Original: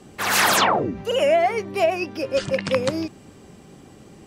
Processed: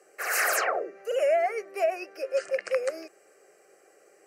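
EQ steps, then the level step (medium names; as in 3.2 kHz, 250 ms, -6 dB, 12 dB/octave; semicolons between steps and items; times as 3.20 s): high-pass 370 Hz 24 dB/octave; static phaser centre 950 Hz, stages 6; -4.5 dB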